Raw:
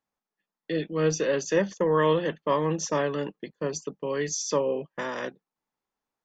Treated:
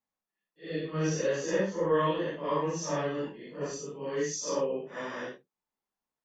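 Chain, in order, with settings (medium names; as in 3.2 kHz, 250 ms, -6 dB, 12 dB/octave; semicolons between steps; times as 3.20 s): phase randomisation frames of 200 ms; trim -4.5 dB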